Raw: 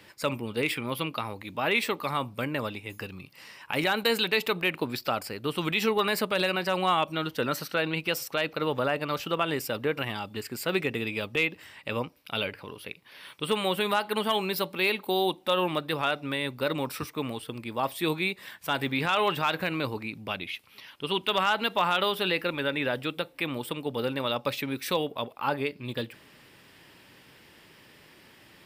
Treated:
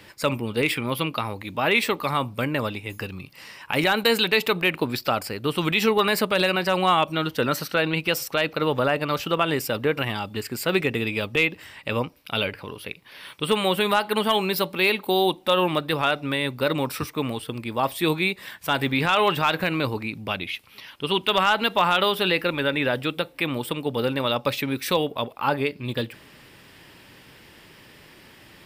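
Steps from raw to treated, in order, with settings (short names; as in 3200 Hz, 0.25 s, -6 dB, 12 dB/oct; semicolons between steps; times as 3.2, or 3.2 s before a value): low shelf 70 Hz +8 dB; gain +5 dB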